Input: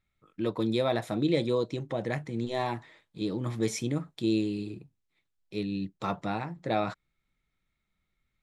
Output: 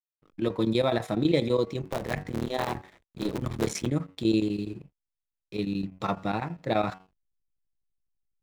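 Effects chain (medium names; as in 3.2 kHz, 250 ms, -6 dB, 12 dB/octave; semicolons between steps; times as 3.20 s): 1.82–3.87 s: cycle switcher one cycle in 3, muted; de-hum 93.79 Hz, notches 28; hysteresis with a dead band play -54 dBFS; square tremolo 12 Hz, depth 65%, duty 80%; trim +3.5 dB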